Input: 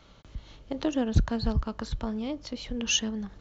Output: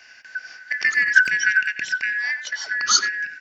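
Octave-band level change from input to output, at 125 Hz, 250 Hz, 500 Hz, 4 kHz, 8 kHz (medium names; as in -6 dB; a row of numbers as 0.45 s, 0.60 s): under -20 dB, under -20 dB, under -15 dB, +7.0 dB, no reading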